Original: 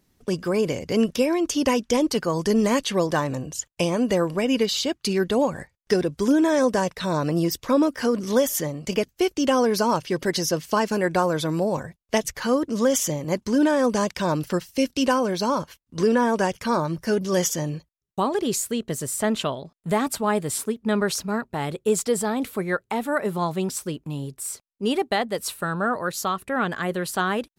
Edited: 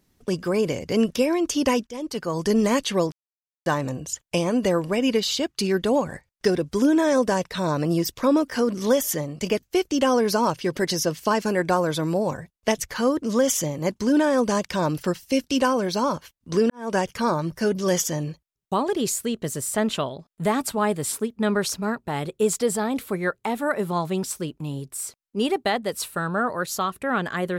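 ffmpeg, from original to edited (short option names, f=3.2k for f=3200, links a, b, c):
-filter_complex "[0:a]asplit=4[a][b][c][d];[a]atrim=end=1.87,asetpts=PTS-STARTPTS,afade=t=out:st=1.866:d=0.004:c=hsin:silence=0.0944061[e];[b]atrim=start=1.87:end=3.12,asetpts=PTS-STARTPTS,afade=t=in:d=0.62:silence=0.0944061,afade=t=out:st=1.246:d=0.004:c=hsin,apad=pad_dur=0.54[f];[c]atrim=start=3.12:end=16.16,asetpts=PTS-STARTPTS,afade=t=in:d=0.004:c=hsin,afade=t=out:st=13.036:d=0.004:c=hsin[g];[d]atrim=start=16.16,asetpts=PTS-STARTPTS,afade=t=in:d=0.25:c=qua[h];[e][f][g][h]concat=n=4:v=0:a=1"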